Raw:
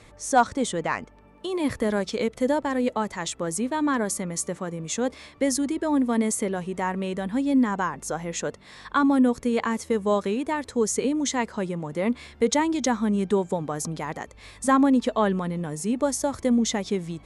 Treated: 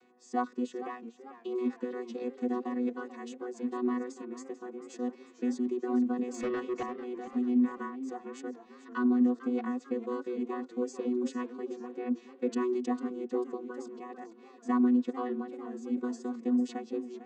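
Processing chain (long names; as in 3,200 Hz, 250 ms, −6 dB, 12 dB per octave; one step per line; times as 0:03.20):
channel vocoder with a chord as carrier bare fifth, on B3
0:06.34–0:06.83: mid-hump overdrive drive 22 dB, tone 3,700 Hz, clips at −17.5 dBFS
feedback echo with a swinging delay time 446 ms, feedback 49%, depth 126 cents, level −13.5 dB
level −7 dB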